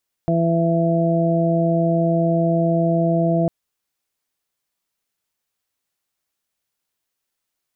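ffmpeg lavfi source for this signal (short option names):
-f lavfi -i "aevalsrc='0.126*sin(2*PI*167*t)+0.075*sin(2*PI*334*t)+0.0447*sin(2*PI*501*t)+0.1*sin(2*PI*668*t)':d=3.2:s=44100"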